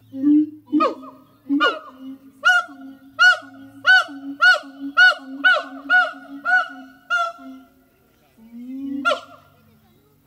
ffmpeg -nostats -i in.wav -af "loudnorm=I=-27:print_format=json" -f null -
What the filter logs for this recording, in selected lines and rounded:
"input_i" : "-18.3",
"input_tp" : "-4.0",
"input_lra" : "14.1",
"input_thresh" : "-30.8",